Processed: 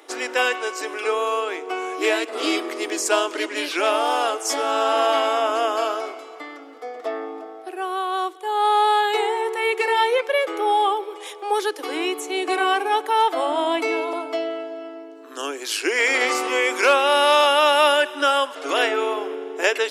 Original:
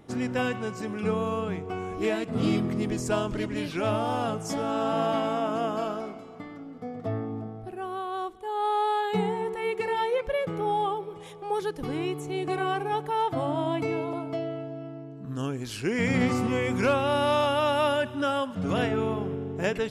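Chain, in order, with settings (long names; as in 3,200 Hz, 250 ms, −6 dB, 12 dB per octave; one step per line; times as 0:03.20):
Butterworth high-pass 300 Hz 72 dB per octave
tilt shelving filter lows −5 dB, about 910 Hz
level +8.5 dB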